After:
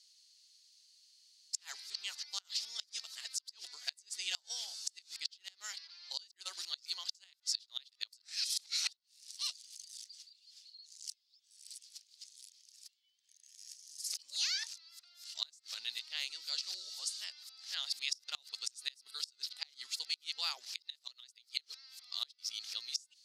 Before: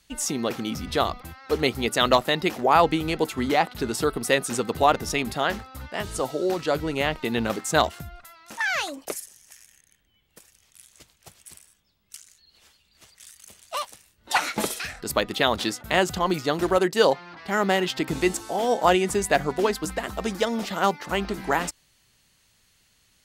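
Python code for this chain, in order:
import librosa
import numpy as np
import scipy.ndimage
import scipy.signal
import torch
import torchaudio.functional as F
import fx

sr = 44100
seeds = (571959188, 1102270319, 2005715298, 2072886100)

y = np.flip(x).copy()
y = fx.ladder_bandpass(y, sr, hz=5200.0, resonance_pct=60)
y = fx.gate_flip(y, sr, shuts_db=-29.0, range_db=-28)
y = F.gain(torch.from_numpy(y), 8.5).numpy()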